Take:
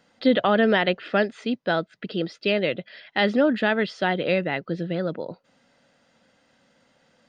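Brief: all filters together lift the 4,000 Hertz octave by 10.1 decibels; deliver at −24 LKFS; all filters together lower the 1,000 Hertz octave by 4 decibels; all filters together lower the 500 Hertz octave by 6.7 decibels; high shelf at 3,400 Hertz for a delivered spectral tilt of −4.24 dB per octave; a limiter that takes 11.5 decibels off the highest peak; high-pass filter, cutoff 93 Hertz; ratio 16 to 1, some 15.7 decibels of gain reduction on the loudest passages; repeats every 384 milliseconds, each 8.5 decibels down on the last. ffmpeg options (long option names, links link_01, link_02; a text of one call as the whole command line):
ffmpeg -i in.wav -af "highpass=93,equalizer=frequency=500:width_type=o:gain=-7.5,equalizer=frequency=1000:width_type=o:gain=-4,highshelf=frequency=3400:gain=8.5,equalizer=frequency=4000:width_type=o:gain=8.5,acompressor=threshold=-30dB:ratio=16,alimiter=limit=-24dB:level=0:latency=1,aecho=1:1:384|768|1152|1536:0.376|0.143|0.0543|0.0206,volume=12dB" out.wav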